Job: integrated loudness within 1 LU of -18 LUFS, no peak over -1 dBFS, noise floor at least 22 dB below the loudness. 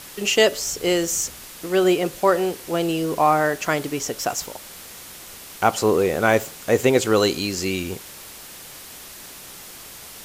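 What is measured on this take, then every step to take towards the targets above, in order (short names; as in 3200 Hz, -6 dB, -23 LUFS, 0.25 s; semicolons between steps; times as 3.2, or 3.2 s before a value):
noise floor -41 dBFS; noise floor target -43 dBFS; loudness -21.0 LUFS; peak -2.0 dBFS; loudness target -18.0 LUFS
-> denoiser 6 dB, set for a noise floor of -41 dBFS; gain +3 dB; limiter -1 dBFS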